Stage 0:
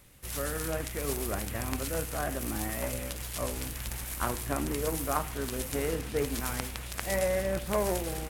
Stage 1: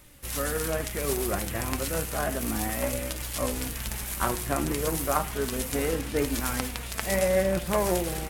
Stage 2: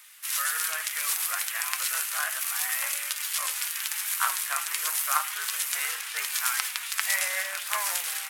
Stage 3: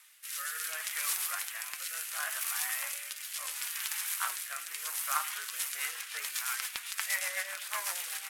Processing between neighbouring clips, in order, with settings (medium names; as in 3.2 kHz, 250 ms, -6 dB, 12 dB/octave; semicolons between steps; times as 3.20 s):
flange 0.32 Hz, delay 3.2 ms, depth 2.8 ms, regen +58%; trim +8.5 dB
high-pass 1.2 kHz 24 dB/octave; trim +5.5 dB
rotary cabinet horn 0.7 Hz, later 8 Hz, at 5.17 s; saturation -11.5 dBFS, distortion -24 dB; trim -3.5 dB